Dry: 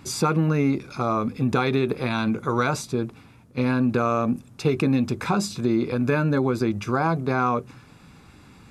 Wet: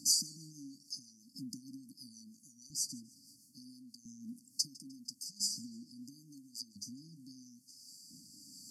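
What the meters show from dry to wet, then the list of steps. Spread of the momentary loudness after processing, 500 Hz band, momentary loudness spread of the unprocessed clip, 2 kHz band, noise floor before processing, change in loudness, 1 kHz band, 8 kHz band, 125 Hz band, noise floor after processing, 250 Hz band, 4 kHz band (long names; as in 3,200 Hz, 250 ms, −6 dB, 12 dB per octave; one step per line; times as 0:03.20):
20 LU, below −40 dB, 5 LU, below −40 dB, −51 dBFS, −16.0 dB, below −40 dB, +1.5 dB, −34.0 dB, −65 dBFS, −27.0 dB, −2.5 dB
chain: downward compressor 4 to 1, threshold −38 dBFS, peak gain reduction 17.5 dB
rotating-speaker cabinet horn 6.3 Hz, later 0.85 Hz, at 0:03.95
auto-filter high-pass saw up 0.74 Hz 600–1,600 Hz
linear-phase brick-wall band-stop 300–4,400 Hz
feedback echo with a swinging delay time 152 ms, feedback 45%, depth 77 cents, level −22 dB
level +13 dB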